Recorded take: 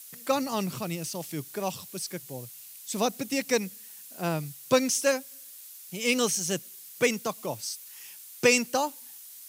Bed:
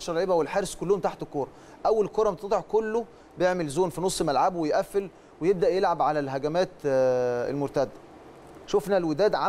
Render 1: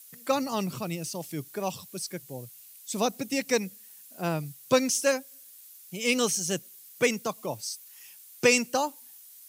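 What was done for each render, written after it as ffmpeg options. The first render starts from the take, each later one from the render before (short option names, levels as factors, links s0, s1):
-af "afftdn=nr=6:nf=-47"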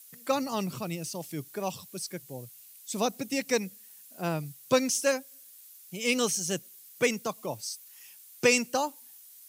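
-af "volume=0.841"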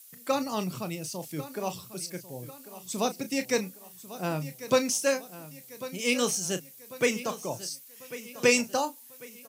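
-filter_complex "[0:a]asplit=2[s0][s1];[s1]adelay=33,volume=0.282[s2];[s0][s2]amix=inputs=2:normalize=0,aecho=1:1:1095|2190|3285|4380:0.178|0.0818|0.0376|0.0173"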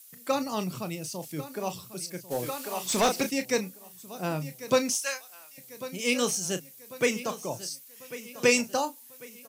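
-filter_complex "[0:a]asplit=3[s0][s1][s2];[s0]afade=t=out:st=2.3:d=0.02[s3];[s1]asplit=2[s4][s5];[s5]highpass=f=720:p=1,volume=14.1,asoftclip=type=tanh:threshold=0.188[s6];[s4][s6]amix=inputs=2:normalize=0,lowpass=f=4500:p=1,volume=0.501,afade=t=in:st=2.3:d=0.02,afade=t=out:st=3.29:d=0.02[s7];[s2]afade=t=in:st=3.29:d=0.02[s8];[s3][s7][s8]amix=inputs=3:normalize=0,asettb=1/sr,asplit=3[s9][s10][s11];[s9]atrim=end=4.954[s12];[s10]atrim=start=4.95:end=5.58,asetpts=PTS-STARTPTS,afade=t=in:d=0.004:c=qsin,afade=t=out:st=0.626:d=0.004:c=qsin,highpass=1100[s13];[s11]atrim=start=5.576[s14];[s12][s13]acrossfade=d=0.004:c1=hsin:c2=qsin[s15];[s15][s14]acrossfade=d=0.004:c1=qsin:c2=hsin"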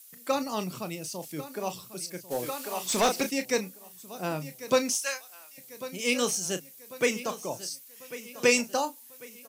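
-af "equalizer=f=110:t=o:w=1.2:g=-6.5"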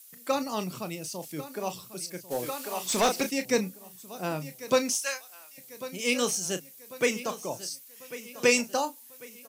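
-filter_complex "[0:a]asettb=1/sr,asplit=3[s0][s1][s2];[s0]atrim=end=3.454[s3];[s1]atrim=start=3.45:end=3.96,asetpts=PTS-STARTPTS,afade=t=in:d=0.004:c=qsin,afade=t=out:st=0.506:d=0.004:c=qsin,lowshelf=f=210:g=11[s4];[s2]atrim=start=3.956[s5];[s3][s4]acrossfade=d=0.004:c1=hsin:c2=qsin[s6];[s6][s5]acrossfade=d=0.004:c1=qsin:c2=hsin"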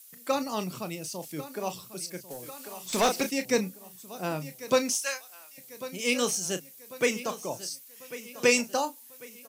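-filter_complex "[0:a]asettb=1/sr,asplit=3[s0][s1][s2];[s0]atrim=end=2.204[s3];[s1]atrim=start=2.2:end=2.93,asetpts=PTS-STARTPTS,afade=t=in:d=0.004:c=qsin,afade=t=out:st=0.726:d=0.004:c=qsin,acrossover=split=180|5800[s4][s5][s6];[s4]acompressor=threshold=0.00224:ratio=4[s7];[s5]acompressor=threshold=0.00794:ratio=4[s8];[s6]acompressor=threshold=0.00631:ratio=4[s9];[s7][s8][s9]amix=inputs=3:normalize=0[s10];[s2]atrim=start=2.926[s11];[s3][s10]acrossfade=d=0.004:c1=hsin:c2=qsin[s12];[s12][s11]acrossfade=d=0.004:c1=qsin:c2=hsin"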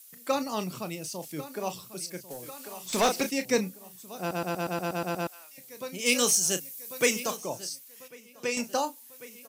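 -filter_complex "[0:a]asettb=1/sr,asplit=3[s0][s1][s2];[s0]atrim=end=6.064[s3];[s1]atrim=start=6.06:end=7.37,asetpts=PTS-STARTPTS,afade=t=in:d=0.004:c=qsin,afade=t=out:st=1.306:d=0.004:c=qsin,highshelf=f=4400:g=9.5[s4];[s2]atrim=start=7.366[s5];[s3][s4]acrossfade=d=0.004:c1=hsin:c2=qsin[s6];[s6][s5]acrossfade=d=0.004:c1=qsin:c2=hsin,asplit=12[s7][s8][s9][s10][s11][s12][s13][s14][s15][s16][s17][s18];[s7]atrim=end=4.312[s19];[s8]atrim=start=4.188:end=4.312[s20];[s9]atrim=start=4.188:end=4.312[s21];[s10]atrim=start=4.188:end=4.312[s22];[s11]atrim=start=4.188:end=4.312[s23];[s12]atrim=start=4.188:end=4.312[s24];[s13]atrim=start=4.188:end=4.312[s25];[s14]atrim=start=4.188:end=4.312[s26];[s15]atrim=start=4.188:end=4.312[s27];[s16]atrim=start=5.268:end=8.08,asetpts=PTS-STARTPTS,afade=t=out:st=2.662:d=0.15:c=log:silence=0.354813[s28];[s17]atrim=start=8.08:end=8.57,asetpts=PTS-STARTPTS,volume=0.355[s29];[s18]atrim=start=8.57,asetpts=PTS-STARTPTS,afade=t=in:d=0.15:c=log:silence=0.354813[s30];[s19][s20]acrossfade=d=0.004:c1=hsin:c2=hsin[s31];[s31][s21]acrossfade=d=0.004:c1=hsin:c2=hsin[s32];[s32][s22]acrossfade=d=0.004:c1=hsin:c2=hsin[s33];[s33][s23]acrossfade=d=0.004:c1=hsin:c2=hsin[s34];[s34][s24]acrossfade=d=0.004:c1=hsin:c2=hsin[s35];[s35][s25]acrossfade=d=0.004:c1=hsin:c2=hsin[s36];[s36][s26]acrossfade=d=0.004:c1=hsin:c2=hsin[s37];[s37][s27]acrossfade=d=0.004:c1=hsin:c2=hsin[s38];[s28][s29][s30]concat=n=3:v=0:a=1[s39];[s38][s39]acrossfade=d=0.004:c1=hsin:c2=hsin"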